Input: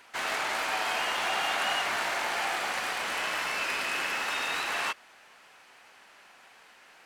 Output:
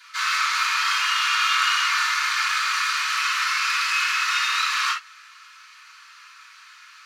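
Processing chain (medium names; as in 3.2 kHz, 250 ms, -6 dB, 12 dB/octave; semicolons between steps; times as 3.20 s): elliptic high-pass 1.2 kHz, stop band 40 dB; reverberation, pre-delay 3 ms, DRR -10.5 dB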